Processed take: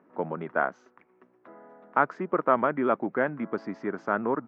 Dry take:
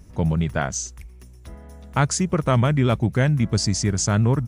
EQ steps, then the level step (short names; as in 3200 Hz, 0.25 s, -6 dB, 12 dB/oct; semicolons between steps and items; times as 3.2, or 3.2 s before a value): HPF 270 Hz 24 dB/oct; ladder low-pass 1700 Hz, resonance 35%; +5.5 dB